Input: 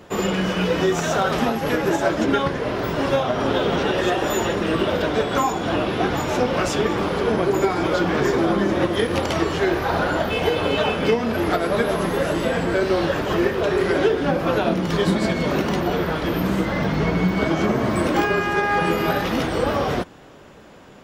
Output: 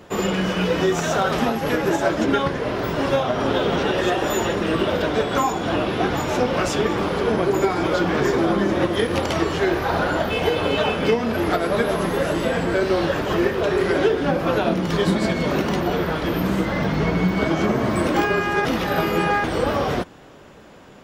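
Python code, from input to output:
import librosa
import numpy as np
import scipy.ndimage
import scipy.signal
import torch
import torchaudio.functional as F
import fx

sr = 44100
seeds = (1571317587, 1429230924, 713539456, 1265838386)

y = fx.edit(x, sr, fx.reverse_span(start_s=18.65, length_s=0.79), tone=tone)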